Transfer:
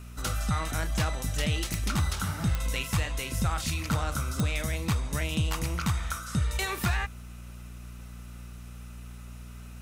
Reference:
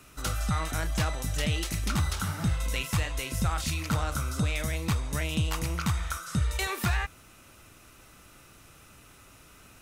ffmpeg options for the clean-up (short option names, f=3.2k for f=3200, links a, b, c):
-af "adeclick=t=4,bandreject=f=59.7:t=h:w=4,bandreject=f=119.4:t=h:w=4,bandreject=f=179.1:t=h:w=4,bandreject=f=238.8:t=h:w=4"